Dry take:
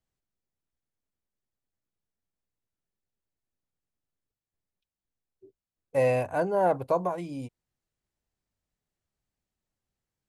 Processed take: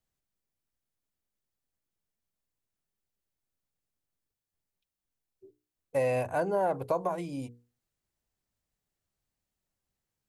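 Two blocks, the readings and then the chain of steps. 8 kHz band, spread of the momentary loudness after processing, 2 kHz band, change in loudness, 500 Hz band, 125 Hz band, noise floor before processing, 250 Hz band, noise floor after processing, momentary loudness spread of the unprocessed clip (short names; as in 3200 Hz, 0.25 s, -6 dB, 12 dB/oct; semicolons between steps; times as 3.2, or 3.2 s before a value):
n/a, 10 LU, -2.5 dB, -3.5 dB, -3.5 dB, -3.5 dB, under -85 dBFS, -2.5 dB, under -85 dBFS, 14 LU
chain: high shelf 7500 Hz +4.5 dB; notches 60/120/180/240/300/360/420/480 Hz; compressor, threshold -24 dBFS, peak gain reduction 5 dB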